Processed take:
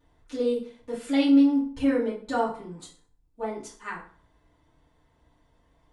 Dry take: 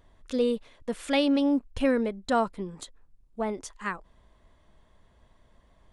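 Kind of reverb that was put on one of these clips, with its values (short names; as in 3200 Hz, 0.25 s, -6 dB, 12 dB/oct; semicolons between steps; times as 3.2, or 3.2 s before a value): FDN reverb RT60 0.45 s, low-frequency decay 1.05×, high-frequency decay 0.8×, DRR -10 dB; gain -12.5 dB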